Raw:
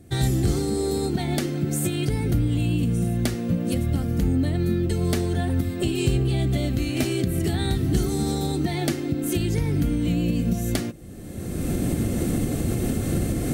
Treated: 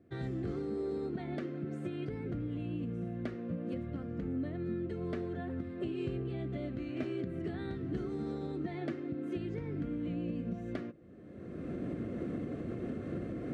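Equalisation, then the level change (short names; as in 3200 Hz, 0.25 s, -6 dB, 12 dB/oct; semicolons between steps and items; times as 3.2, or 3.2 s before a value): HPF 390 Hz 6 dB/oct; LPF 1400 Hz 12 dB/oct; bell 830 Hz -11 dB 0.37 oct; -7.0 dB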